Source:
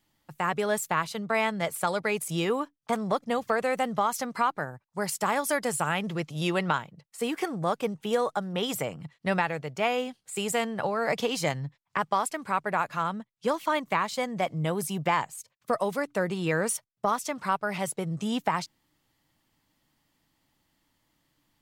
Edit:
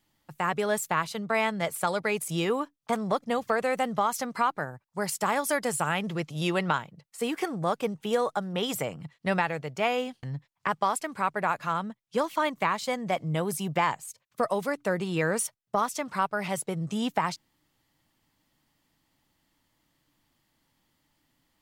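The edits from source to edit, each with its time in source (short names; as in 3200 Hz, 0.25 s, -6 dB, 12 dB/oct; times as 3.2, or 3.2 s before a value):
10.23–11.53 cut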